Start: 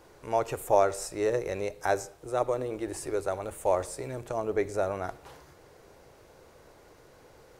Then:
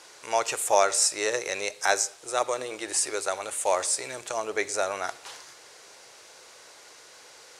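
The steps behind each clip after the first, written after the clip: frequency weighting ITU-R 468; trim +4.5 dB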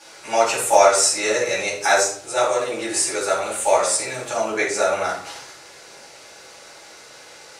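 simulated room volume 500 m³, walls furnished, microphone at 8.1 m; trim -3.5 dB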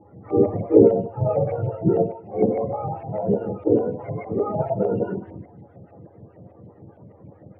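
spectrum inverted on a logarithmic axis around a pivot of 520 Hz; LFO low-pass saw up 6.6 Hz 700–2200 Hz; lamp-driven phase shifter 4.8 Hz; trim +1 dB

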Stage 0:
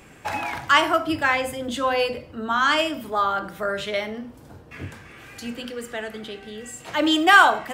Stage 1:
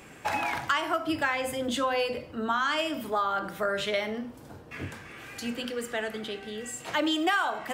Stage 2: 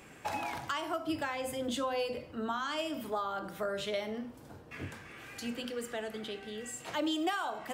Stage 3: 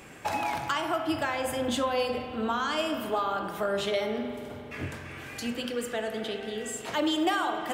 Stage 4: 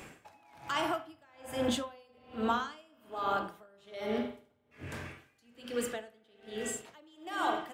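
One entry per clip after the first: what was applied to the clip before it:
bass shelf 94 Hz -8 dB; compression 6:1, threshold -24 dBFS, peak gain reduction 14.5 dB
dynamic bell 1.8 kHz, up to -7 dB, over -40 dBFS, Q 1; trim -4.5 dB
spring tank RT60 2.9 s, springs 45 ms, chirp 55 ms, DRR 7 dB; trim +5.5 dB
logarithmic tremolo 1.2 Hz, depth 33 dB

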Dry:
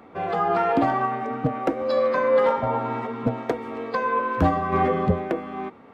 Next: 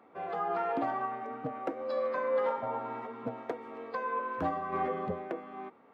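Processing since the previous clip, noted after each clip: high-pass 430 Hz 6 dB/octave; treble shelf 2.6 kHz -9 dB; trim -8 dB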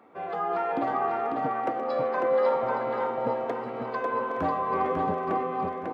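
backward echo that repeats 434 ms, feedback 76%, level -10 dB; delay 547 ms -3.5 dB; trim +3.5 dB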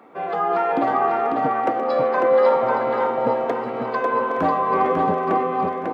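high-pass 120 Hz; trim +7.5 dB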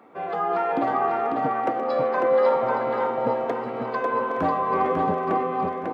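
bass shelf 64 Hz +11 dB; trim -3.5 dB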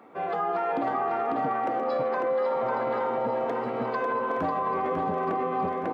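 peak limiter -19.5 dBFS, peak gain reduction 9.5 dB

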